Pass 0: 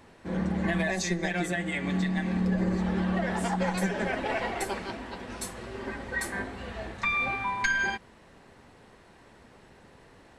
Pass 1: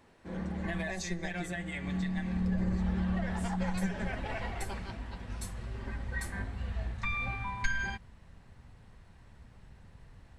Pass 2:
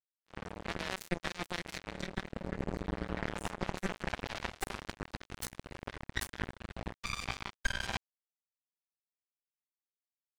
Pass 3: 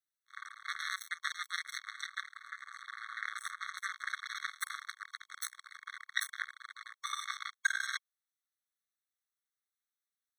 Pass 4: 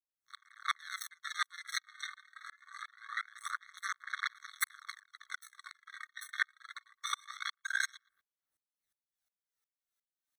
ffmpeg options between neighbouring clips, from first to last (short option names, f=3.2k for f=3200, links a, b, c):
-af "asubboost=boost=8.5:cutoff=120,volume=-7.5dB"
-af "areverse,acompressor=threshold=-43dB:ratio=5,areverse,acrusher=bits=5:mix=0:aa=0.5,volume=14.5dB"
-af "afftfilt=real='re*eq(mod(floor(b*sr/1024/1100),2),1)':imag='im*eq(mod(floor(b*sr/1024/1100),2),1)':win_size=1024:overlap=0.75,volume=4.5dB"
-filter_complex "[0:a]aphaser=in_gain=1:out_gain=1:delay=3.3:decay=0.51:speed=0.24:type=sinusoidal,asplit=2[a][b];[b]adelay=117,lowpass=f=980:p=1,volume=-23dB,asplit=2[c][d];[d]adelay=117,lowpass=f=980:p=1,volume=0.39,asplit=2[e][f];[f]adelay=117,lowpass=f=980:p=1,volume=0.39[g];[a][c][e][g]amix=inputs=4:normalize=0,aeval=exprs='val(0)*pow(10,-31*if(lt(mod(-2.8*n/s,1),2*abs(-2.8)/1000),1-mod(-2.8*n/s,1)/(2*abs(-2.8)/1000),(mod(-2.8*n/s,1)-2*abs(-2.8)/1000)/(1-2*abs(-2.8)/1000))/20)':c=same,volume=7dB"